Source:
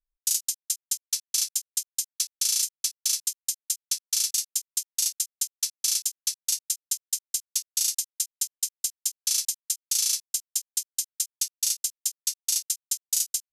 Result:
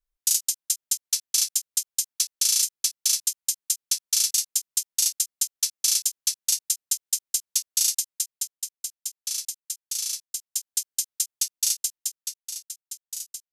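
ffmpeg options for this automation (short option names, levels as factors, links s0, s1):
-af "volume=2.99,afade=t=out:st=7.87:d=0.79:silence=0.421697,afade=t=in:st=10.31:d=0.49:silence=0.473151,afade=t=out:st=11.76:d=0.7:silence=0.266073"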